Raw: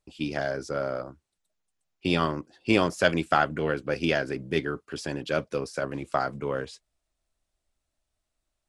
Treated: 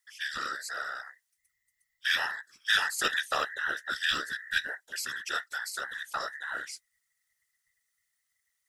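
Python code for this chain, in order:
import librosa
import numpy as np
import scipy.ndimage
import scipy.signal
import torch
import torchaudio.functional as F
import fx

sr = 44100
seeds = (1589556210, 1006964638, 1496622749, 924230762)

y = fx.band_invert(x, sr, width_hz=2000)
y = librosa.effects.preemphasis(y, coef=0.9, zi=[0.0])
y = fx.whisperise(y, sr, seeds[0])
y = y * 10.0 ** (7.0 / 20.0)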